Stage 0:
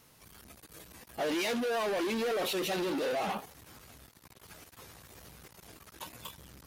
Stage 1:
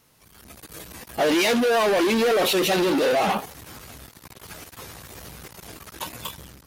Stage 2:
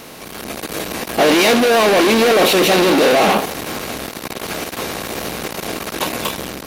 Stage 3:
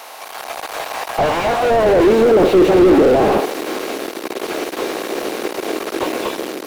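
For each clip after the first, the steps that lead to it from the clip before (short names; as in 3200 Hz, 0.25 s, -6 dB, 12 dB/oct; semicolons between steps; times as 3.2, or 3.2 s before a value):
AGC gain up to 11.5 dB
per-bin compression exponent 0.6; gain +5 dB
high-pass sweep 780 Hz -> 350 Hz, 1.54–2.18; slew limiter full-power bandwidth 170 Hz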